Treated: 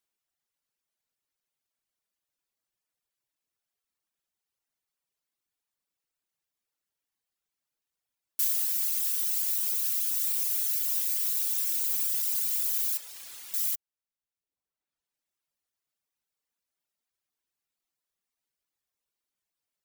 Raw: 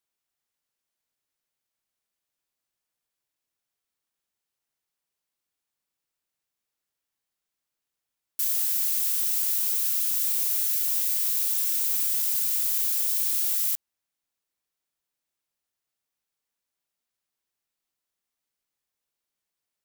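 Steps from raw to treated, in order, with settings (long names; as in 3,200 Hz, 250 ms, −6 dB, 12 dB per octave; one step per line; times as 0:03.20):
reverb reduction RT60 1.3 s
0:12.97–0:13.54: RIAA equalisation playback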